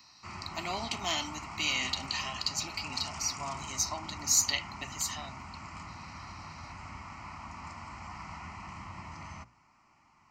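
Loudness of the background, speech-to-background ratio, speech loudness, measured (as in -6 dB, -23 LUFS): -43.5 LUFS, 11.5 dB, -32.0 LUFS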